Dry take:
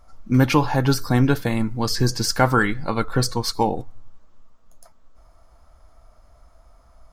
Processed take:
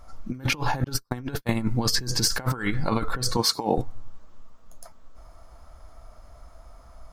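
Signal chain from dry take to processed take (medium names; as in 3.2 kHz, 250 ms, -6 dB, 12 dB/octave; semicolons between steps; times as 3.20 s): 0.84–1.49 s: gate -18 dBFS, range -49 dB; 3.37–3.78 s: high-pass 170 Hz 12 dB/octave; compressor with a negative ratio -24 dBFS, ratio -0.5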